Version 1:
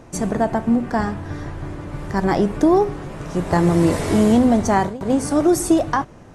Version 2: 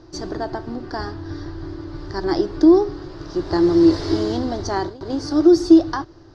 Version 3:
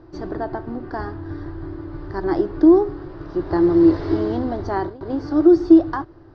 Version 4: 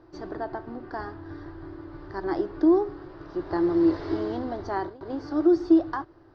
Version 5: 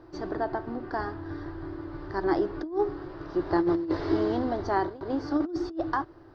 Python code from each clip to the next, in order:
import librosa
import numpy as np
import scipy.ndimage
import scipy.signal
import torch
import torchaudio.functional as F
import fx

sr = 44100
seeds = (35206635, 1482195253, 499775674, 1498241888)

y1 = fx.curve_eq(x, sr, hz=(110.0, 220.0, 330.0, 470.0, 1600.0, 2400.0, 4800.0, 8100.0, 11000.0), db=(0, -17, 9, -7, -2, -11, 11, -20, -24))
y1 = y1 * 10.0 ** (-2.0 / 20.0)
y2 = scipy.signal.sosfilt(scipy.signal.butter(2, 2100.0, 'lowpass', fs=sr, output='sos'), y1)
y3 = fx.low_shelf(y2, sr, hz=300.0, db=-8.0)
y3 = y3 * 10.0 ** (-4.0 / 20.0)
y4 = fx.over_compress(y3, sr, threshold_db=-24.0, ratio=-0.5)